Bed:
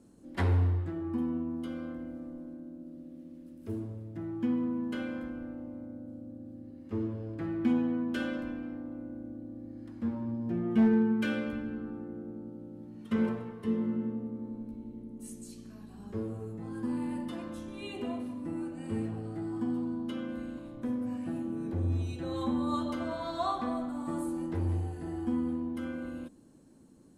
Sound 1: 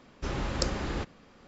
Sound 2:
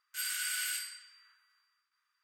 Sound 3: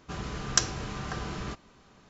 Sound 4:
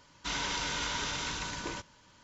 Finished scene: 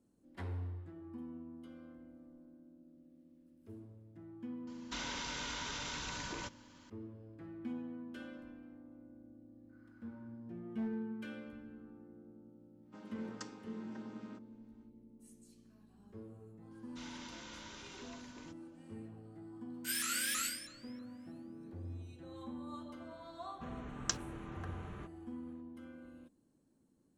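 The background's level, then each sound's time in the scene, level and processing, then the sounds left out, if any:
bed -15 dB
4.67 add 4 -2 dB + compressor 5:1, threshold -36 dBFS
9.55 add 2 -4 dB + inverse Chebyshev low-pass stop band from 3400 Hz, stop band 70 dB
12.83 add 3 -17 dB, fades 0.10 s + chord vocoder major triad, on G#3
16.71 add 4 -17.5 dB
19.7 add 2 -1 dB + shaped vibrato saw up 3.1 Hz, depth 250 cents
23.52 add 3 -11.5 dB + Wiener smoothing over 9 samples
not used: 1

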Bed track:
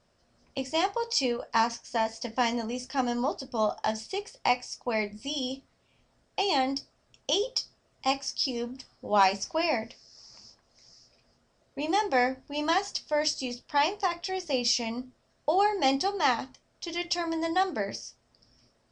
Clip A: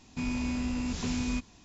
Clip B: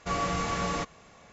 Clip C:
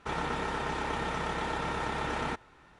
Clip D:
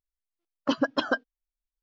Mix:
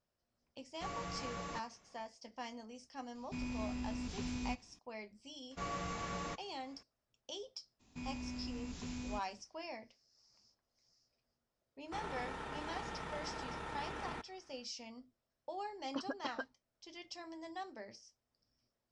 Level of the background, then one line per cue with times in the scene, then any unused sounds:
bed track -19 dB
0.75 add B -14 dB
3.15 add A -9.5 dB + notch 6800 Hz, Q 13
5.51 add B -11.5 dB
7.79 add A -12.5 dB, fades 0.02 s
11.86 add C -11.5 dB
15.27 add D -16.5 dB

